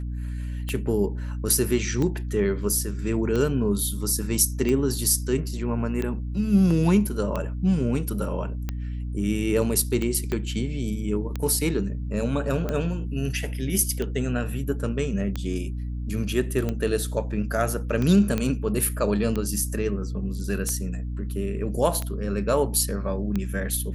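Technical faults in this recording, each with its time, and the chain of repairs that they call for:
hum 60 Hz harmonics 5 -30 dBFS
tick 45 rpm -15 dBFS
10.32 s: pop -15 dBFS
18.38 s: pop -12 dBFS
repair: de-click; de-hum 60 Hz, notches 5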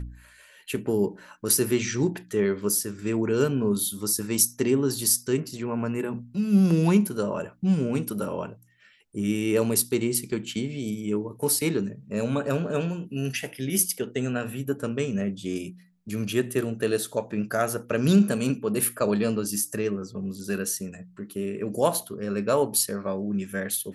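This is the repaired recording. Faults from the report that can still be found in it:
10.32 s: pop

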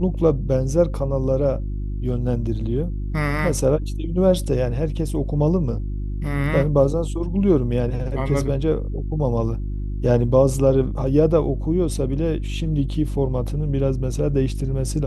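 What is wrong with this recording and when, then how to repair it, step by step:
hum 50 Hz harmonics 7 -26 dBFS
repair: de-hum 50 Hz, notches 7

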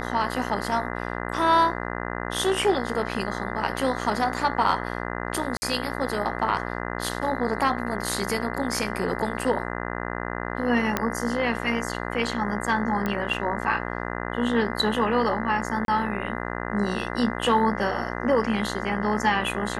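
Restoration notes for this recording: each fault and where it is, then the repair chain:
buzz 60 Hz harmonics 34 -31 dBFS
5.57–5.62 s: dropout 50 ms
10.97 s: pop -8 dBFS
13.06 s: pop -14 dBFS
15.85–15.88 s: dropout 32 ms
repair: de-click; de-hum 60 Hz, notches 34; interpolate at 5.57 s, 50 ms; interpolate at 15.85 s, 32 ms

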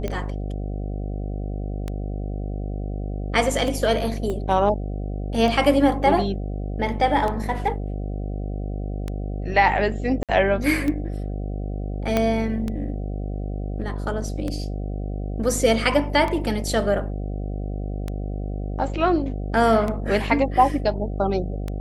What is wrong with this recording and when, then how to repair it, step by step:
buzz 50 Hz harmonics 15 -28 dBFS
tick 33 1/3 rpm -15 dBFS
4.30 s: dropout 2.3 ms
10.23–10.29 s: dropout 57 ms
12.17 s: pop -7 dBFS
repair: de-click; de-hum 50 Hz, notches 15; interpolate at 4.30 s, 2.3 ms; interpolate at 10.23 s, 57 ms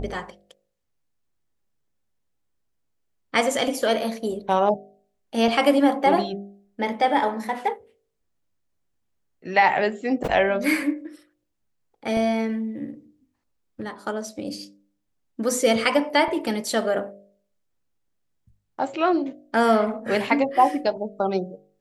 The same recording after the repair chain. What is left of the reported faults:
12.17 s: pop

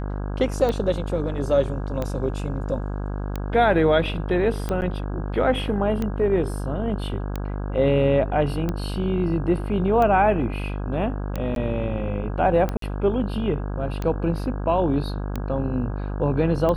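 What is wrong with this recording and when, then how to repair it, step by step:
buzz 50 Hz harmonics 33 -28 dBFS
tick 45 rpm -14 dBFS
4.81–4.82 s: dropout 9.6 ms
11.55–11.56 s: dropout 12 ms
12.77–12.82 s: dropout 53 ms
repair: de-click; de-hum 50 Hz, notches 33; interpolate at 4.81 s, 9.6 ms; interpolate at 11.55 s, 12 ms; interpolate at 12.77 s, 53 ms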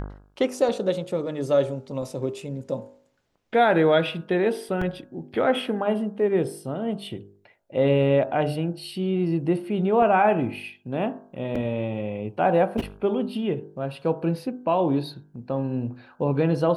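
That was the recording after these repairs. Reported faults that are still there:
nothing left

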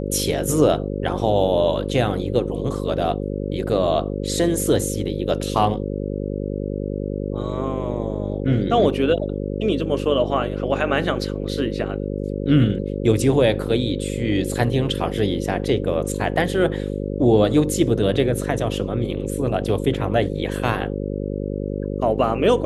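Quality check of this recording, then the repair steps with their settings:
buzz 50 Hz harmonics 11 -26 dBFS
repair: de-hum 50 Hz, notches 11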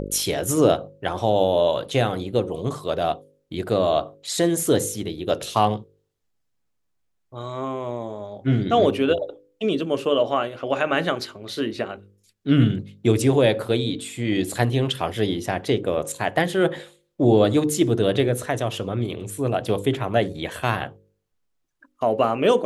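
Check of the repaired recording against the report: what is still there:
nothing left

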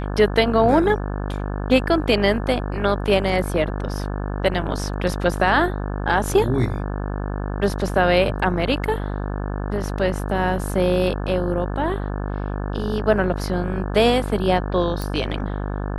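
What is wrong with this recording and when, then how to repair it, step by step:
buzz 50 Hz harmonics 35 -26 dBFS
15.02 s: pop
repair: de-click; de-hum 50 Hz, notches 35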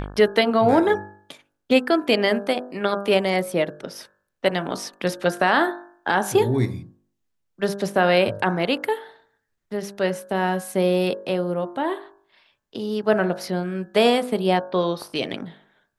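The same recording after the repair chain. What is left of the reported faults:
nothing left

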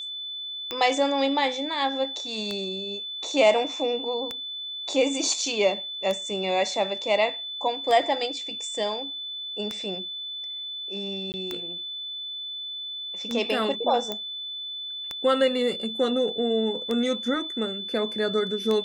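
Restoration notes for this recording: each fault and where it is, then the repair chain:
tick 33 1/3 rpm -15 dBFS
whine 3.5 kHz -32 dBFS
11.32–11.34 s: dropout 19 ms
14.12 s: pop -15 dBFS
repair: de-click; band-stop 3.5 kHz, Q 30; interpolate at 11.32 s, 19 ms

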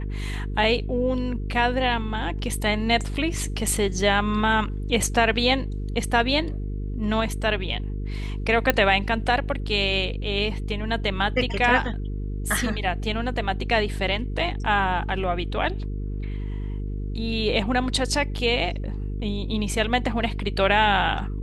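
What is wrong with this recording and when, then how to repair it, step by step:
buzz 50 Hz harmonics 9 -29 dBFS
8.70 s: pop -4 dBFS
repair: de-click; de-hum 50 Hz, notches 9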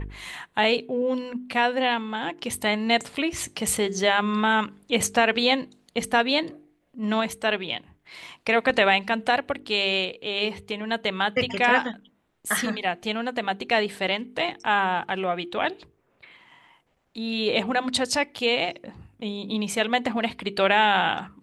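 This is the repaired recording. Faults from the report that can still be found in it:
nothing left

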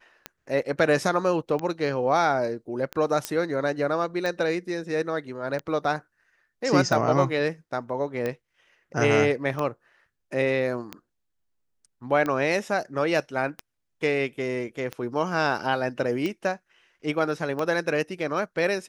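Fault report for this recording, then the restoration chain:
tick 45 rpm -16 dBFS
3.25 s: pop -10 dBFS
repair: de-click

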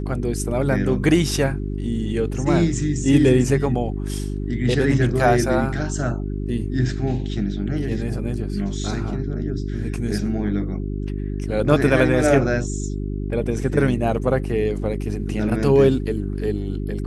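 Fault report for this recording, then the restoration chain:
hum 50 Hz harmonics 8 -26 dBFS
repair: de-hum 50 Hz, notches 8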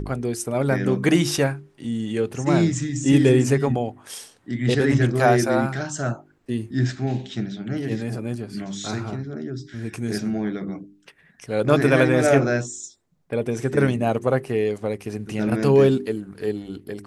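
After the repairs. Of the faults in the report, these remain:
nothing left

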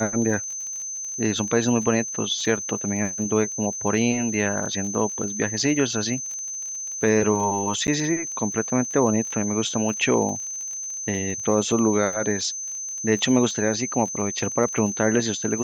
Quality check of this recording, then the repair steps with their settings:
crackle 35 per s -31 dBFS
whine 6.2 kHz -29 dBFS
7.87–7.88 s: dropout 9.3 ms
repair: de-click; band-stop 6.2 kHz, Q 30; interpolate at 7.87 s, 9.3 ms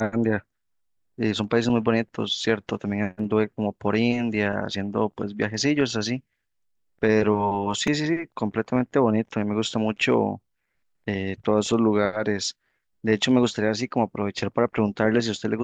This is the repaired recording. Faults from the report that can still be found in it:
nothing left

